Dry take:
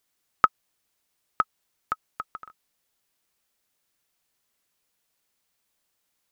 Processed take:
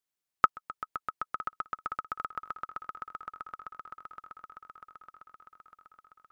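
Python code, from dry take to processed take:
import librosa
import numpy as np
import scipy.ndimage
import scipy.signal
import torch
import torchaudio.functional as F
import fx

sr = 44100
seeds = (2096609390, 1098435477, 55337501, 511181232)

y = fx.level_steps(x, sr, step_db=18)
y = fx.echo_swell(y, sr, ms=129, loudest=8, wet_db=-14)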